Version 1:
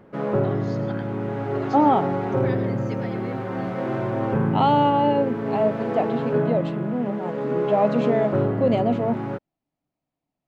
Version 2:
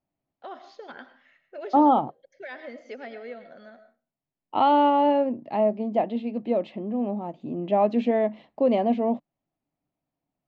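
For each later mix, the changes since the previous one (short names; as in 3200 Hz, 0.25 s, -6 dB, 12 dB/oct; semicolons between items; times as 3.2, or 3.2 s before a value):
background: muted; master: add air absorption 130 m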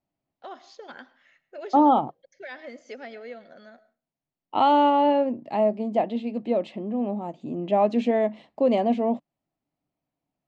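first voice: send -8.5 dB; master: remove air absorption 130 m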